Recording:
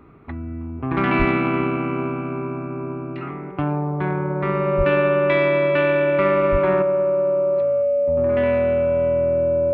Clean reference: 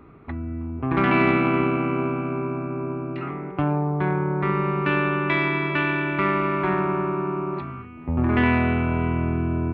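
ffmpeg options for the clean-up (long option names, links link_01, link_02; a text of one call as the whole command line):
ffmpeg -i in.wav -filter_complex "[0:a]bandreject=frequency=570:width=30,asplit=3[link_01][link_02][link_03];[link_01]afade=type=out:start_time=1.18:duration=0.02[link_04];[link_02]highpass=frequency=140:width=0.5412,highpass=frequency=140:width=1.3066,afade=type=in:start_time=1.18:duration=0.02,afade=type=out:start_time=1.3:duration=0.02[link_05];[link_03]afade=type=in:start_time=1.3:duration=0.02[link_06];[link_04][link_05][link_06]amix=inputs=3:normalize=0,asplit=3[link_07][link_08][link_09];[link_07]afade=type=out:start_time=4.77:duration=0.02[link_10];[link_08]highpass=frequency=140:width=0.5412,highpass=frequency=140:width=1.3066,afade=type=in:start_time=4.77:duration=0.02,afade=type=out:start_time=4.89:duration=0.02[link_11];[link_09]afade=type=in:start_time=4.89:duration=0.02[link_12];[link_10][link_11][link_12]amix=inputs=3:normalize=0,asplit=3[link_13][link_14][link_15];[link_13]afade=type=out:start_time=6.51:duration=0.02[link_16];[link_14]highpass=frequency=140:width=0.5412,highpass=frequency=140:width=1.3066,afade=type=in:start_time=6.51:duration=0.02,afade=type=out:start_time=6.63:duration=0.02[link_17];[link_15]afade=type=in:start_time=6.63:duration=0.02[link_18];[link_16][link_17][link_18]amix=inputs=3:normalize=0,asetnsamples=nb_out_samples=441:pad=0,asendcmd='6.82 volume volume 6.5dB',volume=0dB" out.wav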